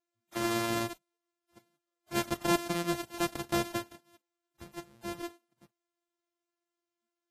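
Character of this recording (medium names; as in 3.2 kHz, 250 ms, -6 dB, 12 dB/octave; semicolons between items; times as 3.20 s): a buzz of ramps at a fixed pitch in blocks of 128 samples; Vorbis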